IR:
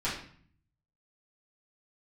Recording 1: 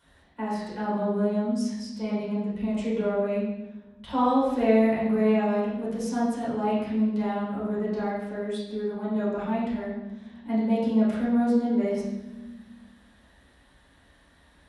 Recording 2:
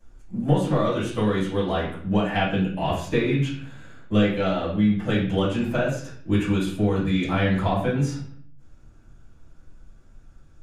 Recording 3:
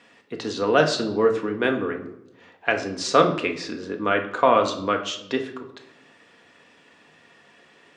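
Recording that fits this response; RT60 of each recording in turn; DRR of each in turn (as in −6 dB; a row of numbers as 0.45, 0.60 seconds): 2; non-exponential decay, 0.50 s, 0.80 s; −8.5, −11.0, 3.0 decibels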